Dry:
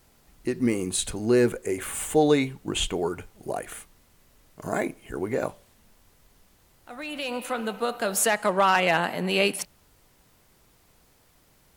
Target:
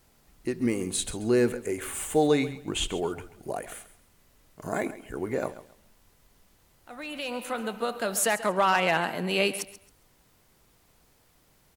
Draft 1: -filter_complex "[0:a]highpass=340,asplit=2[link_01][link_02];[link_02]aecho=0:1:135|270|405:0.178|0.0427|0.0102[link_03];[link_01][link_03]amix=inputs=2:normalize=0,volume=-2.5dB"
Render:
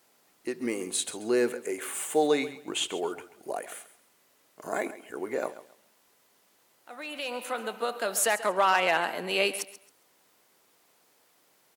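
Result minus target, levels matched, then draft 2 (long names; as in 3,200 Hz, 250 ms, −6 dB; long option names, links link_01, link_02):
250 Hz band −4.0 dB
-filter_complex "[0:a]asplit=2[link_01][link_02];[link_02]aecho=0:1:135|270|405:0.178|0.0427|0.0102[link_03];[link_01][link_03]amix=inputs=2:normalize=0,volume=-2.5dB"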